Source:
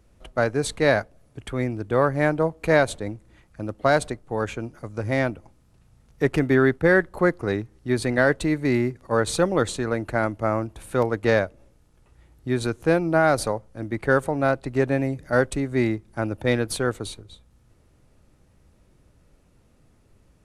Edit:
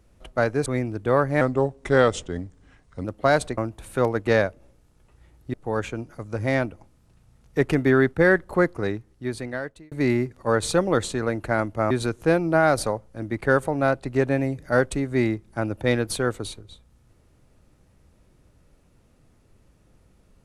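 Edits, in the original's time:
0.66–1.51 s: delete
2.26–3.65 s: speed 85%
7.31–8.56 s: fade out
10.55–12.51 s: move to 4.18 s

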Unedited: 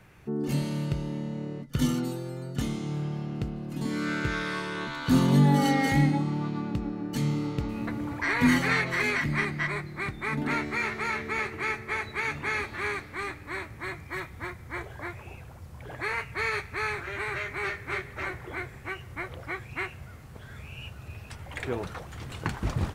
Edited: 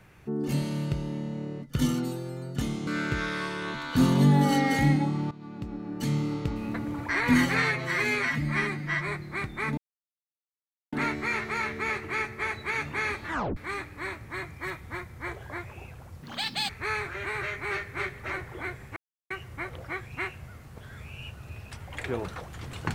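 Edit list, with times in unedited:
2.87–4.00 s: delete
6.44–7.20 s: fade in, from -17.5 dB
8.75–9.72 s: stretch 1.5×
10.42 s: insert silence 1.15 s
12.77 s: tape stop 0.29 s
15.72–16.62 s: speed 192%
18.89 s: insert silence 0.34 s

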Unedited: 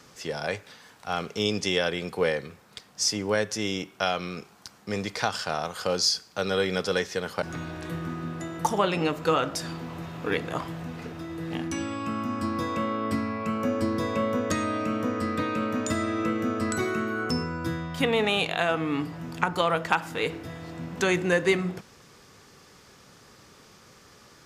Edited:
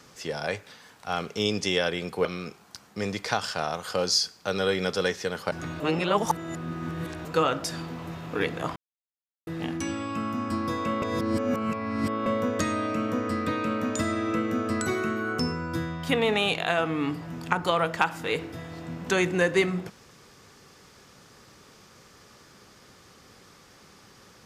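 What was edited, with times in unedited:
2.25–4.16 s: delete
7.71–9.16 s: reverse
10.67–11.38 s: mute
12.93–14.17 s: reverse

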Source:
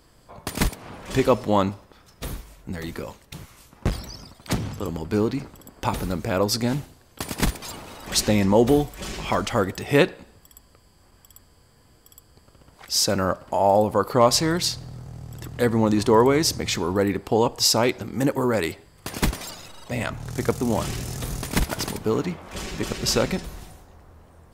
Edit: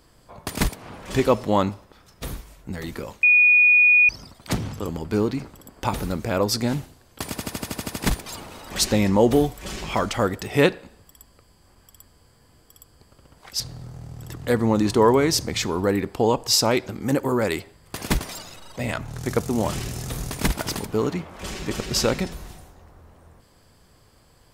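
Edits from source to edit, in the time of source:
3.23–4.09 s: bleep 2.46 kHz -11.5 dBFS
7.30 s: stutter 0.08 s, 9 plays
12.96–14.72 s: delete

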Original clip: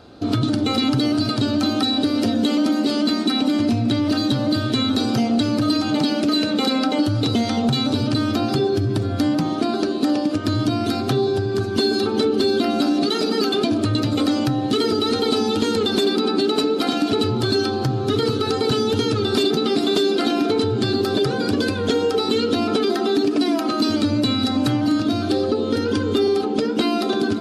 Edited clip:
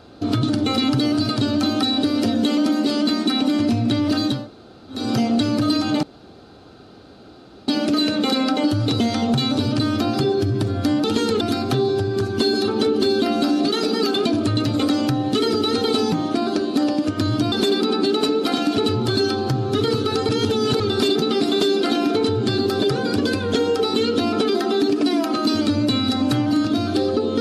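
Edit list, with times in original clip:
4.38–5.00 s: room tone, crossfade 0.24 s
6.03 s: insert room tone 1.65 s
9.39–10.79 s: swap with 15.50–15.87 s
18.64–19.15 s: reverse

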